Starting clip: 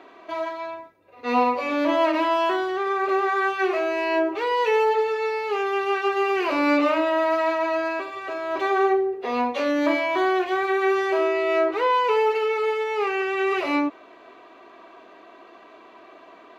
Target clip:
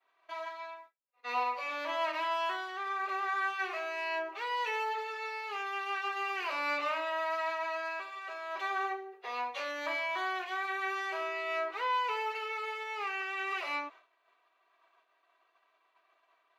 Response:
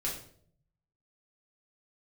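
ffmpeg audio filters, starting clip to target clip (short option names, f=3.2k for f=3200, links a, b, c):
-af "highpass=950,agate=range=-33dB:threshold=-42dB:ratio=3:detection=peak,volume=-7dB"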